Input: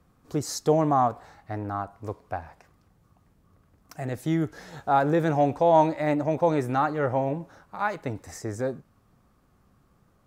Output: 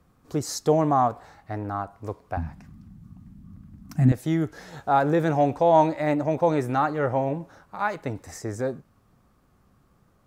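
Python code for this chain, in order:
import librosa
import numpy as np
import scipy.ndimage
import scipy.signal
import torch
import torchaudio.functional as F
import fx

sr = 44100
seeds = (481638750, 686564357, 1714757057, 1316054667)

y = fx.low_shelf_res(x, sr, hz=320.0, db=12.5, q=3.0, at=(2.37, 4.12))
y = y * librosa.db_to_amplitude(1.0)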